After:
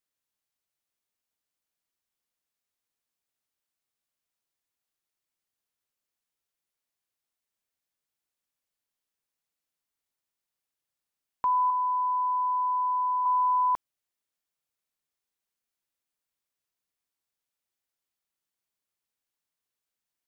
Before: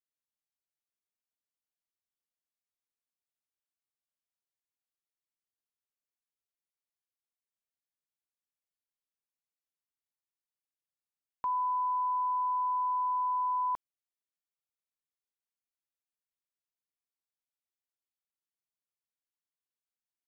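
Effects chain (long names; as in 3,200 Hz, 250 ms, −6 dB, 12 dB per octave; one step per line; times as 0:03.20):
0:11.70–0:13.26: high-pass filter 1,000 Hz 6 dB per octave
level +6.5 dB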